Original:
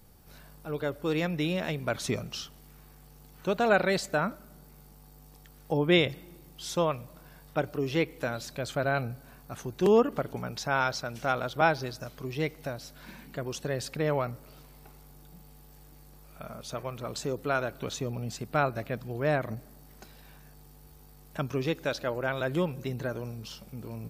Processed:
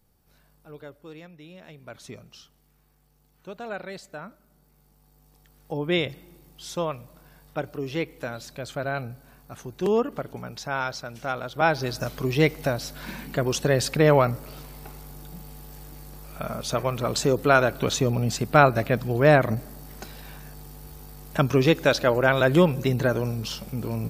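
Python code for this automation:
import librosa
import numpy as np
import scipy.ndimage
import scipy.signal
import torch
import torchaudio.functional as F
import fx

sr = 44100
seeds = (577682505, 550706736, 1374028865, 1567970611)

y = fx.gain(x, sr, db=fx.line((0.76, -9.5), (1.39, -18.0), (1.97, -11.0), (4.34, -11.0), (6.03, -1.0), (11.49, -1.0), (12.02, 10.5)))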